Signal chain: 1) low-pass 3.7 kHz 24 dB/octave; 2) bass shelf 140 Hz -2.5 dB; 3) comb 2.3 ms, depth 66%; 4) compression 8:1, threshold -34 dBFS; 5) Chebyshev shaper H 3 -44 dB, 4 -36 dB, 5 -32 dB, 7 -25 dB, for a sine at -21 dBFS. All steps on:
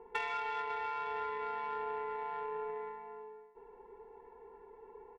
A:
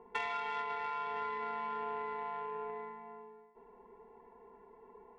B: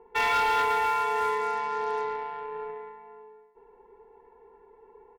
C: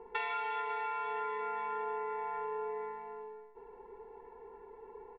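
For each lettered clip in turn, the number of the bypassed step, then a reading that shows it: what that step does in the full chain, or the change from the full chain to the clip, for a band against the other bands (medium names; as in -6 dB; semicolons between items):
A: 3, 250 Hz band +5.5 dB; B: 4, mean gain reduction 4.5 dB; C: 5, crest factor change -1.5 dB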